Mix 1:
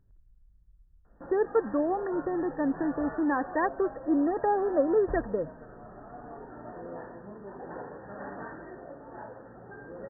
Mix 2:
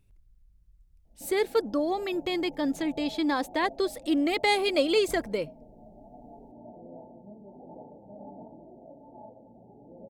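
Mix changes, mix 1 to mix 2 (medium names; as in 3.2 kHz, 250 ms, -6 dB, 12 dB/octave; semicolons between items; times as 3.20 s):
background: add rippled Chebyshev low-pass 900 Hz, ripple 9 dB; master: remove brick-wall FIR low-pass 1.9 kHz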